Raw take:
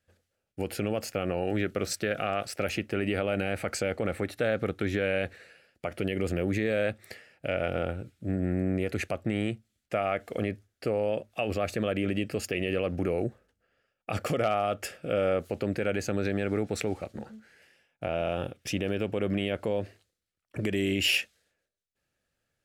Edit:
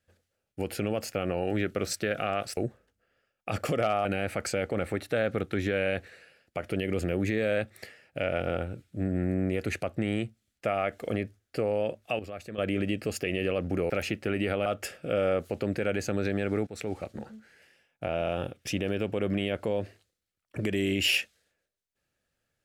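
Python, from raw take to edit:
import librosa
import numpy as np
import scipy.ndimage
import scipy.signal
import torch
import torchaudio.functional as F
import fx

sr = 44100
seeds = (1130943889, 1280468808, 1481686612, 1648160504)

y = fx.edit(x, sr, fx.swap(start_s=2.57, length_s=0.76, other_s=13.18, other_length_s=1.48),
    fx.clip_gain(start_s=11.47, length_s=0.39, db=-10.5),
    fx.fade_in_from(start_s=16.67, length_s=0.33, floor_db=-15.0), tone=tone)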